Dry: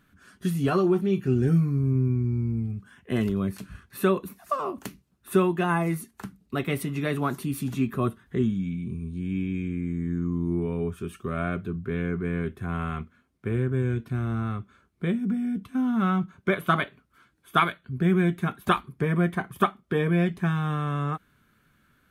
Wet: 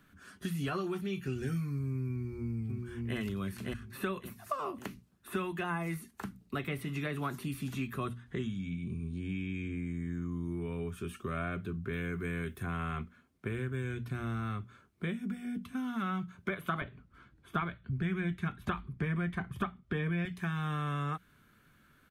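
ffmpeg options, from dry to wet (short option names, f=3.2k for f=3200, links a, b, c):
-filter_complex "[0:a]asplit=2[a][b];[b]afade=t=in:st=2.13:d=0.01,afade=t=out:st=3.17:d=0.01,aecho=0:1:560|1120|1680|2240:0.595662|0.178699|0.0536096|0.0160829[c];[a][c]amix=inputs=2:normalize=0,asettb=1/sr,asplit=3[d][e][f];[d]atrim=end=7.984[g];[e]atrim=start=7.98:end=9.75,asetpts=PTS-STARTPTS,afade=t=in:d=0.004:c=qsin,afade=t=out:st=1.766:d=0.004:c=qsin,lowpass=8.8k[h];[f]atrim=start=9.746[i];[g][h]acrossfade=d=0.004:c1=hsin:c2=qsin[j];[j][i]acrossfade=d=0.004:c1=qsin:c2=hsin,asettb=1/sr,asplit=3[k][l][m];[k]atrim=end=11.934[n];[l]atrim=start=11.93:end=12.63,asetpts=PTS-STARTPTS,afade=t=in:d=0.004:c=qsin,afade=t=out:st=0.696:d=0.004:c=qsin,aemphasis=mode=production:type=50kf[o];[m]atrim=start=12.626[p];[n][o]acrossfade=d=0.004:c1=hsin:c2=qsin[q];[q][p]acrossfade=d=0.004:c1=qsin:c2=hsin,asettb=1/sr,asplit=3[r][s][t];[r]atrim=end=16.814[u];[s]atrim=start=16.81:end=20.25,asetpts=PTS-STARTPTS,afade=t=in:d=0.004:c=qsin,afade=t=out:st=3.436:d=0.004:c=qsin,aemphasis=mode=reproduction:type=bsi[v];[t]atrim=start=20.246[w];[u][v]acrossfade=d=0.004:c1=hsin:c2=qsin[x];[x][w]acrossfade=d=0.004:c1=qsin:c2=hsin,acrossover=split=3000[y][z];[z]acompressor=threshold=-48dB:ratio=4:attack=1:release=60[aa];[y][aa]amix=inputs=2:normalize=0,bandreject=f=60:t=h:w=6,bandreject=f=120:t=h:w=6,bandreject=f=180:t=h:w=6,bandreject=f=240:t=h:w=6,acrossover=split=97|1400[ab][ac][ad];[ab]acompressor=threshold=-44dB:ratio=4[ae];[ac]acompressor=threshold=-37dB:ratio=4[af];[ad]acompressor=threshold=-39dB:ratio=4[ag];[ae][af][ag]amix=inputs=3:normalize=0"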